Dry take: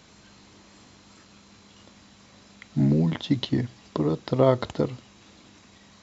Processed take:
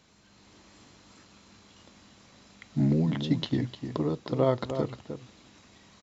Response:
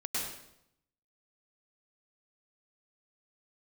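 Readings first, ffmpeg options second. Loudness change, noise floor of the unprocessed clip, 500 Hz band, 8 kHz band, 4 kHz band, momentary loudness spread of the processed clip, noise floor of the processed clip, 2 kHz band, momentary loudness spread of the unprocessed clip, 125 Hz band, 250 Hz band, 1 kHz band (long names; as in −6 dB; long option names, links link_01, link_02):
−4.0 dB, −54 dBFS, −4.5 dB, can't be measured, −3.5 dB, 13 LU, −60 dBFS, −3.5 dB, 10 LU, −3.5 dB, −3.0 dB, −4.5 dB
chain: -filter_complex "[0:a]asplit=2[link_01][link_02];[link_02]adelay=303.2,volume=-9dB,highshelf=frequency=4000:gain=-6.82[link_03];[link_01][link_03]amix=inputs=2:normalize=0,dynaudnorm=framelen=280:gausssize=3:maxgain=5.5dB,volume=-8.5dB"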